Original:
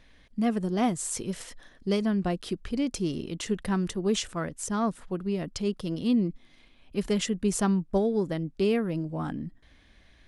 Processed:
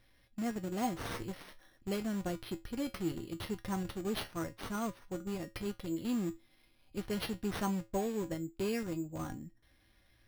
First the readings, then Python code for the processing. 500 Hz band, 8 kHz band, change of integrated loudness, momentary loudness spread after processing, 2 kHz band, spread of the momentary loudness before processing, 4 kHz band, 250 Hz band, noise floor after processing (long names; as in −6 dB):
−9.5 dB, −12.5 dB, −9.0 dB, 9 LU, −5.5 dB, 9 LU, −8.0 dB, −9.5 dB, −68 dBFS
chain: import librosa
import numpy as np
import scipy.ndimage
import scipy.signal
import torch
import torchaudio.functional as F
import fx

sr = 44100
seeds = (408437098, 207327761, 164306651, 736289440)

p1 = fx.schmitt(x, sr, flips_db=-27.0)
p2 = x + (p1 * 10.0 ** (-6.5 / 20.0))
p3 = fx.comb_fb(p2, sr, f0_hz=110.0, decay_s=0.21, harmonics='odd', damping=0.0, mix_pct=80)
y = np.repeat(p3[::6], 6)[:len(p3)]